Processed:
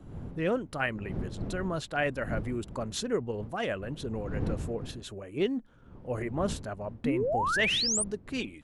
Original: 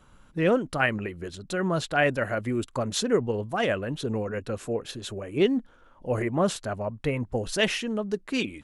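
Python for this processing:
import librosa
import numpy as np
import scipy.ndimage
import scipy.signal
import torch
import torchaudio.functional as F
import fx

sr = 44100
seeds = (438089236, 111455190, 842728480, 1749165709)

y = fx.dmg_wind(x, sr, seeds[0], corner_hz=190.0, level_db=-34.0)
y = fx.spec_paint(y, sr, seeds[1], shape='rise', start_s=7.04, length_s=1.0, low_hz=220.0, high_hz=9800.0, level_db=-22.0)
y = y * librosa.db_to_amplitude(-6.5)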